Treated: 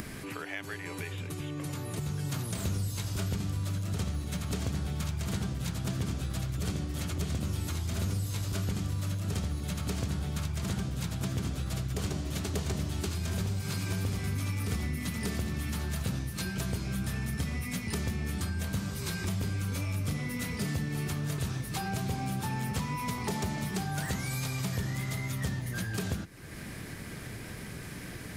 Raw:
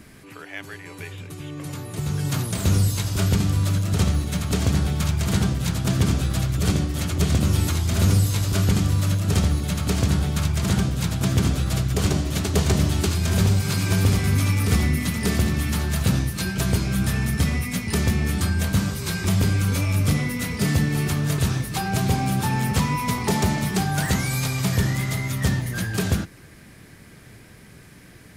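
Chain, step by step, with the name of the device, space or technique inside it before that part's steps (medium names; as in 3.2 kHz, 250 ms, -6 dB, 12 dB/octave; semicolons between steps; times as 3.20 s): upward and downward compression (upward compressor, threshold -23 dBFS; compression 3:1, threshold -24 dBFS, peak gain reduction 8 dB); trim -6.5 dB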